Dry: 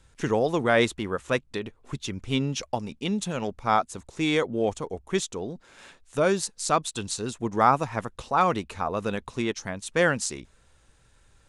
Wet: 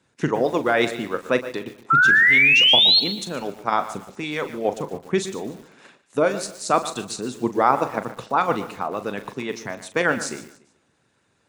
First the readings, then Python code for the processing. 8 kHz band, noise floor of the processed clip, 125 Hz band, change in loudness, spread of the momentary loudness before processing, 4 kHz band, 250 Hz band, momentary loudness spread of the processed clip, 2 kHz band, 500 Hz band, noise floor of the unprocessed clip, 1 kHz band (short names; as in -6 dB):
-1.0 dB, -67 dBFS, -2.0 dB, +7.5 dB, 13 LU, +15.5 dB, +1.0 dB, 19 LU, +12.5 dB, +2.5 dB, -61 dBFS, +3.0 dB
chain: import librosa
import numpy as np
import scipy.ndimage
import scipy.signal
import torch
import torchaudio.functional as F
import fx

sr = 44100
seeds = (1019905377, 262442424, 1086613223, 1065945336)

p1 = scipy.signal.sosfilt(scipy.signal.butter(4, 130.0, 'highpass', fs=sr, output='sos'), x)
p2 = fx.high_shelf(p1, sr, hz=5600.0, db=-7.5)
p3 = fx.notch(p2, sr, hz=3200.0, q=21.0)
p4 = fx.hpss(p3, sr, part='harmonic', gain_db=-12)
p5 = fx.low_shelf(p4, sr, hz=340.0, db=4.5)
p6 = fx.level_steps(p5, sr, step_db=13)
p7 = p5 + F.gain(torch.from_numpy(p6), 0.0).numpy()
p8 = fx.spec_paint(p7, sr, seeds[0], shape='rise', start_s=1.9, length_s=1.1, low_hz=1300.0, high_hz=4400.0, level_db=-15.0)
p9 = fx.doubler(p8, sr, ms=40.0, db=-12.0)
p10 = p9 + fx.echo_feedback(p9, sr, ms=145, feedback_pct=35, wet_db=-17.0, dry=0)
y = fx.echo_crushed(p10, sr, ms=119, feedback_pct=35, bits=6, wet_db=-14)